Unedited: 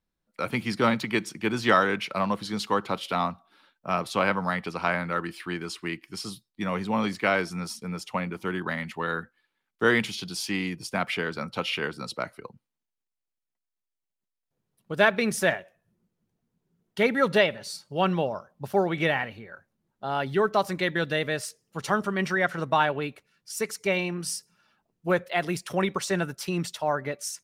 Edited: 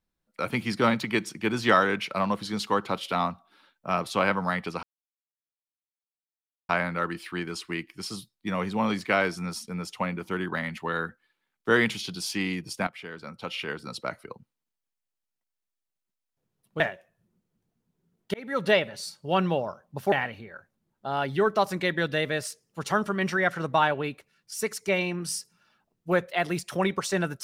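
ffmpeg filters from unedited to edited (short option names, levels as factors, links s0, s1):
-filter_complex "[0:a]asplit=6[s0][s1][s2][s3][s4][s5];[s0]atrim=end=4.83,asetpts=PTS-STARTPTS,afade=t=out:st=4.826:d=0.004:c=hsin,apad=pad_dur=1.86[s6];[s1]atrim=start=4.83:end=11.01,asetpts=PTS-STARTPTS,afade=t=in:d=0.004:c=hsin,afade=t=out:st=6.176:d=0.004:c=hsin:silence=0.158489[s7];[s2]atrim=start=11.01:end=14.942,asetpts=PTS-STARTPTS,afade=t=in:d=1.36:silence=0.158489[s8];[s3]atrim=start=15.468:end=17.01,asetpts=PTS-STARTPTS,afade=t=out:st=1.538:d=0.004:c=hsin[s9];[s4]atrim=start=17.01:end=18.792,asetpts=PTS-STARTPTS,afade=t=in:d=0.42[s10];[s5]atrim=start=19.098[s11];[s6][s7][s8]concat=n=3:v=0:a=1[s12];[s9][s10]concat=n=2:v=0:a=1[s13];[s12][s13]acrossfade=d=0.004:c1=hsin:c2=hsin[s14];[s14][s11]acrossfade=d=0.004:c1=hsin:c2=hsin"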